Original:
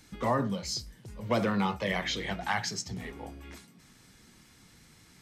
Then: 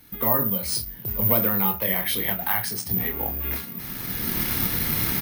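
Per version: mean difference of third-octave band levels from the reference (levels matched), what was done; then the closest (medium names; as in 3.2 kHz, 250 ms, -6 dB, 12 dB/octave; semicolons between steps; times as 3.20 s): 10.5 dB: median filter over 5 samples; recorder AGC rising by 17 dB/s; doubling 27 ms -8 dB; careless resampling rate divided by 3×, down filtered, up zero stuff; trim +1 dB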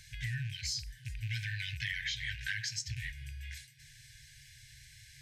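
15.5 dB: rattle on loud lows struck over -40 dBFS, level -38 dBFS; FFT band-reject 150–1500 Hz; treble shelf 8.6 kHz -4.5 dB; compression 6:1, threshold -38 dBFS, peak gain reduction 9 dB; trim +4.5 dB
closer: first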